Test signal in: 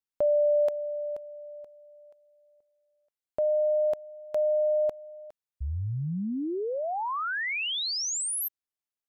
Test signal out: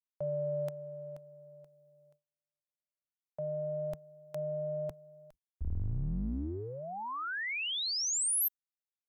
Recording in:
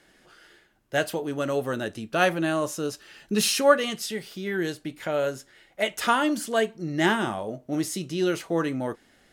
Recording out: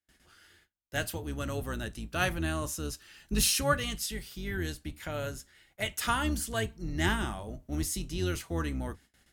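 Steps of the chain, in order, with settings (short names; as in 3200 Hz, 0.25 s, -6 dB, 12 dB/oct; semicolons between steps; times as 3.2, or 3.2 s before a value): octaver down 2 oct, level +1 dB; bell 520 Hz -7 dB 1.4 oct; gate with hold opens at -49 dBFS, closes at -55 dBFS, hold 24 ms, range -29 dB; high shelf 7200 Hz +8.5 dB; gain -5.5 dB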